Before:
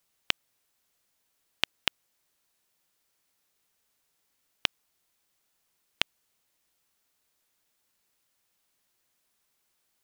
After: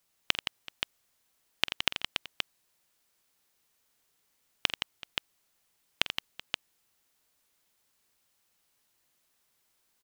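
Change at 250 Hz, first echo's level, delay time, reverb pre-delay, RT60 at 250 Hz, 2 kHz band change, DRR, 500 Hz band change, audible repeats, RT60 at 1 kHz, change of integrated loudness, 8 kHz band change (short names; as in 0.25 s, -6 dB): +1.5 dB, -15.5 dB, 47 ms, none, none, +1.5 dB, none, +1.5 dB, 5, none, -1.5 dB, +2.0 dB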